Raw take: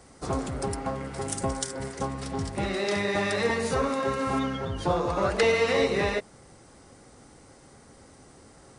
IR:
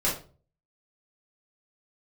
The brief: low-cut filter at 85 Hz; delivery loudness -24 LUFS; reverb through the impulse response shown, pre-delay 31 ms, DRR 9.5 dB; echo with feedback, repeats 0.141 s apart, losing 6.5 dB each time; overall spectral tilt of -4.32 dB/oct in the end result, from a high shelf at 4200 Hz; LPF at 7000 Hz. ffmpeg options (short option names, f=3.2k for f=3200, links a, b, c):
-filter_complex "[0:a]highpass=85,lowpass=7k,highshelf=f=4.2k:g=-5.5,aecho=1:1:141|282|423|564|705|846:0.473|0.222|0.105|0.0491|0.0231|0.0109,asplit=2[a][b];[1:a]atrim=start_sample=2205,adelay=31[c];[b][c]afir=irnorm=-1:irlink=0,volume=-20dB[d];[a][d]amix=inputs=2:normalize=0,volume=3dB"